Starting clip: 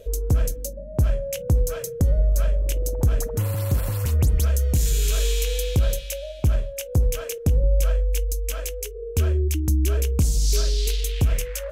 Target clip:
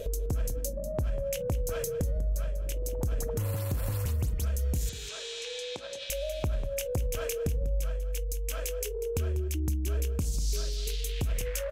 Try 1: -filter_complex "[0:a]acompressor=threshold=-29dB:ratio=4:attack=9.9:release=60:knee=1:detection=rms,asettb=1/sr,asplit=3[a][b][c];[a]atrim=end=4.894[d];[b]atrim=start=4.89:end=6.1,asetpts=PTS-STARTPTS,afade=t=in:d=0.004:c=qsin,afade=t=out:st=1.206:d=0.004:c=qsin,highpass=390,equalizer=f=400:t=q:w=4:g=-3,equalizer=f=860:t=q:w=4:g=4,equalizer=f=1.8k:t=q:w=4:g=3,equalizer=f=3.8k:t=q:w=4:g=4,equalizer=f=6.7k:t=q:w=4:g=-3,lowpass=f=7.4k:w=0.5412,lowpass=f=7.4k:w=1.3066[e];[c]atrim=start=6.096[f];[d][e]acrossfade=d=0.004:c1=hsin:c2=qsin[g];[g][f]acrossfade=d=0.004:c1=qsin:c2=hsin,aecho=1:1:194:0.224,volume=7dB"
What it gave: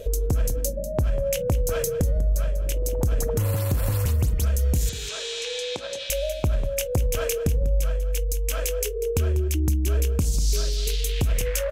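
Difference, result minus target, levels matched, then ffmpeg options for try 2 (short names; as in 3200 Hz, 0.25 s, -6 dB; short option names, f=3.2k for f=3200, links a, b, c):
compressor: peak gain reduction -7.5 dB
-filter_complex "[0:a]acompressor=threshold=-39dB:ratio=4:attack=9.9:release=60:knee=1:detection=rms,asettb=1/sr,asplit=3[a][b][c];[a]atrim=end=4.894[d];[b]atrim=start=4.89:end=6.1,asetpts=PTS-STARTPTS,afade=t=in:d=0.004:c=qsin,afade=t=out:st=1.206:d=0.004:c=qsin,highpass=390,equalizer=f=400:t=q:w=4:g=-3,equalizer=f=860:t=q:w=4:g=4,equalizer=f=1.8k:t=q:w=4:g=3,equalizer=f=3.8k:t=q:w=4:g=4,equalizer=f=6.7k:t=q:w=4:g=-3,lowpass=f=7.4k:w=0.5412,lowpass=f=7.4k:w=1.3066[e];[c]atrim=start=6.096[f];[d][e]acrossfade=d=0.004:c1=hsin:c2=qsin[g];[g][f]acrossfade=d=0.004:c1=qsin:c2=hsin,aecho=1:1:194:0.224,volume=7dB"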